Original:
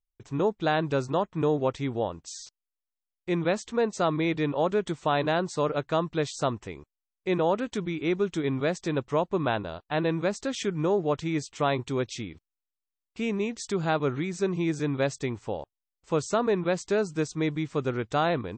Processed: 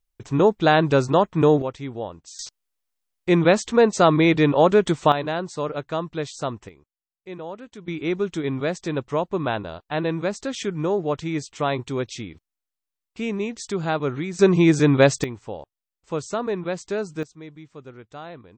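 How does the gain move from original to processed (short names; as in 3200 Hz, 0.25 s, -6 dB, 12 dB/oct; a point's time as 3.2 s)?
+8.5 dB
from 1.62 s -2 dB
from 2.39 s +9.5 dB
from 5.12 s -0.5 dB
from 6.69 s -10 dB
from 7.88 s +2 dB
from 14.39 s +11.5 dB
from 15.24 s -1 dB
from 17.23 s -13 dB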